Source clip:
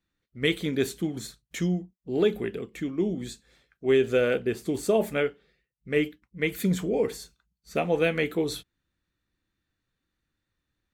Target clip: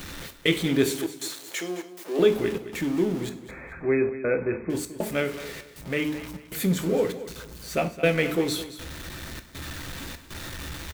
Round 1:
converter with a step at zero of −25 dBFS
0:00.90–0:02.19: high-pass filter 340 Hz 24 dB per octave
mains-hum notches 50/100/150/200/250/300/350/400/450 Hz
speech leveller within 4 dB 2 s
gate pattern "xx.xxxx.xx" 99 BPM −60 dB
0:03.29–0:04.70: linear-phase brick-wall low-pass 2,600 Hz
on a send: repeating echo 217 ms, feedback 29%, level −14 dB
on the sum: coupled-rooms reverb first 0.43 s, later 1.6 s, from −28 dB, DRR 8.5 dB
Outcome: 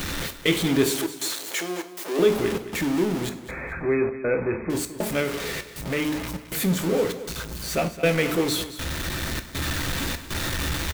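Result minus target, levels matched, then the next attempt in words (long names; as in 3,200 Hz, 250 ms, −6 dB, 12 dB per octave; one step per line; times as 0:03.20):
converter with a step at zero: distortion +8 dB
converter with a step at zero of −34.5 dBFS
0:00.90–0:02.19: high-pass filter 340 Hz 24 dB per octave
mains-hum notches 50/100/150/200/250/300/350/400/450 Hz
speech leveller within 4 dB 2 s
gate pattern "xx.xxxx.xx" 99 BPM −60 dB
0:03.29–0:04.70: linear-phase brick-wall low-pass 2,600 Hz
on a send: repeating echo 217 ms, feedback 29%, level −14 dB
on the sum: coupled-rooms reverb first 0.43 s, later 1.6 s, from −28 dB, DRR 8.5 dB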